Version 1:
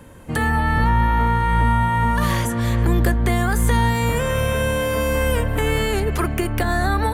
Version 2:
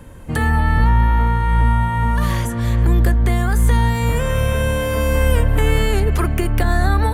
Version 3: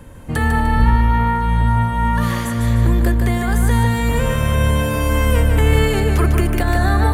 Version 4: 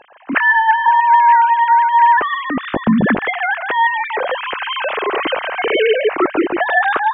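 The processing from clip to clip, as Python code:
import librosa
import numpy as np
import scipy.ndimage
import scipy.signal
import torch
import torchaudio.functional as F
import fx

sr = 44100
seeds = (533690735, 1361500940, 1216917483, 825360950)

y1 = fx.low_shelf(x, sr, hz=81.0, db=11.0)
y1 = fx.rider(y1, sr, range_db=4, speed_s=2.0)
y1 = y1 * librosa.db_to_amplitude(-1.5)
y2 = fx.echo_feedback(y1, sr, ms=150, feedback_pct=42, wet_db=-5.5)
y3 = fx.sine_speech(y2, sr)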